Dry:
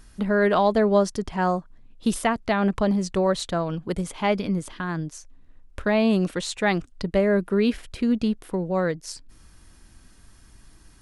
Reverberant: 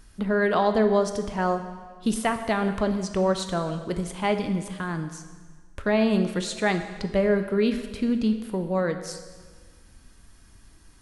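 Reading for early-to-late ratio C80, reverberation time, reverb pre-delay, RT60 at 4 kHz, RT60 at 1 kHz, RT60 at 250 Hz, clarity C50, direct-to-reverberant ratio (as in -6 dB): 10.5 dB, 1.5 s, 4 ms, 1.4 s, 1.5 s, 1.6 s, 9.0 dB, 7.0 dB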